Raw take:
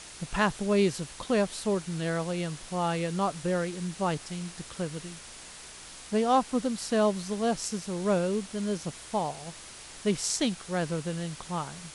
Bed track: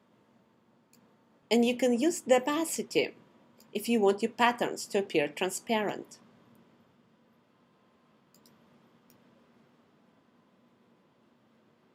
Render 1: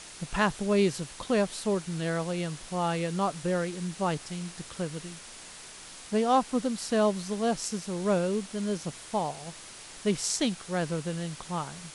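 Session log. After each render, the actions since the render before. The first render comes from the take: de-hum 60 Hz, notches 2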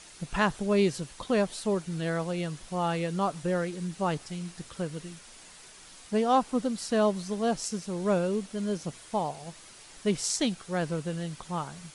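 noise reduction 6 dB, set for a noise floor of -46 dBFS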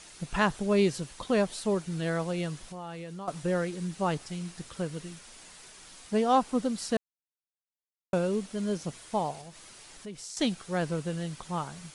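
2.66–3.28 s: compression 3:1, threshold -41 dBFS; 6.97–8.13 s: mute; 9.41–10.37 s: compression 2.5:1, threshold -45 dBFS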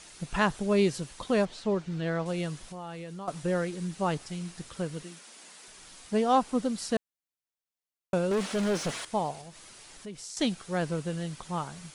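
1.45–2.26 s: distance through air 110 m; 5.03–5.68 s: high-pass 190 Hz 24 dB/octave; 8.31–9.05 s: overdrive pedal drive 25 dB, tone 3 kHz, clips at -20.5 dBFS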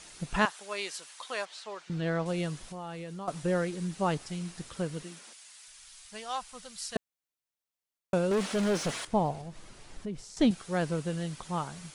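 0.45–1.90 s: high-pass 1 kHz; 5.33–6.96 s: amplifier tone stack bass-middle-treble 10-0-10; 9.07–10.51 s: tilt EQ -2.5 dB/octave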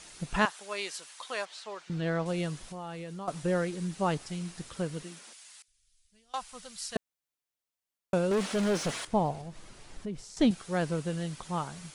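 5.62–6.34 s: amplifier tone stack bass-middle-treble 10-0-1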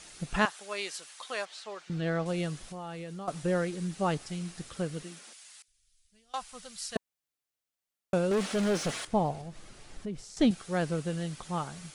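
band-stop 970 Hz, Q 13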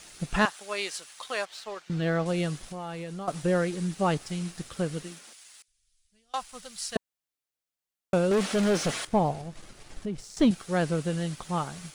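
waveshaping leveller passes 1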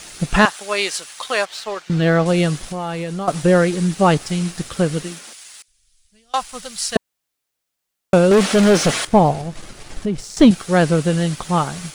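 trim +11.5 dB; peak limiter -2 dBFS, peak gain reduction 2 dB

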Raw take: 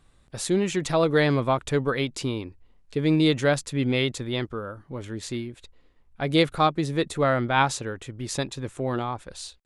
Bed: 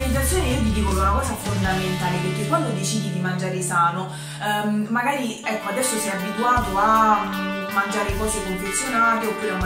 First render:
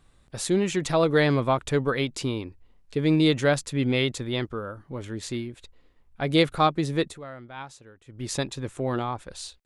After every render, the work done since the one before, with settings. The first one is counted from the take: 7.01–8.24 s: dip -18 dB, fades 0.19 s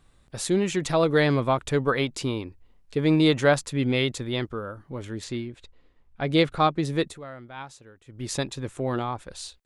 1.82–3.69 s: dynamic bell 950 Hz, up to +5 dB, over -36 dBFS, Q 0.9; 5.24–6.85 s: distance through air 54 m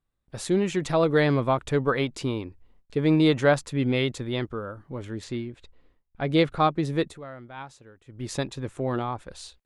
treble shelf 3.2 kHz -6 dB; gate with hold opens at -49 dBFS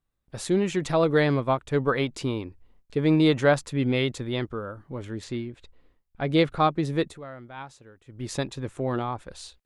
1.19–1.76 s: upward expansion, over -33 dBFS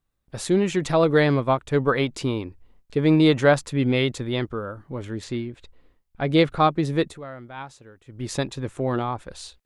trim +3 dB

